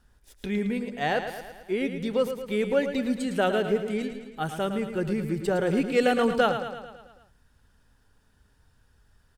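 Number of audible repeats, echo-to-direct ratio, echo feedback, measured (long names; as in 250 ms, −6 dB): 6, −7.0 dB, 58%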